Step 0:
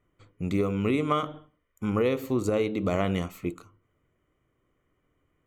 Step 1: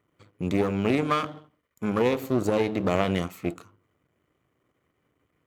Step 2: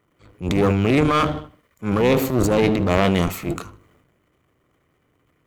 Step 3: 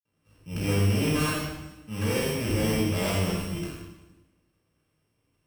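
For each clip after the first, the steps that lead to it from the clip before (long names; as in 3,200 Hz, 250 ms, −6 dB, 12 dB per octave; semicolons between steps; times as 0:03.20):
gain on one half-wave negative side −12 dB; high-pass filter 86 Hz; level +5 dB
sub-octave generator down 1 octave, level −5 dB; transient designer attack −9 dB, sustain +8 dB; feedback echo with a high-pass in the loop 77 ms, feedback 33%, level −22 dB; level +6.5 dB
samples sorted by size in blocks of 16 samples; convolution reverb RT60 1.0 s, pre-delay 53 ms; level +3 dB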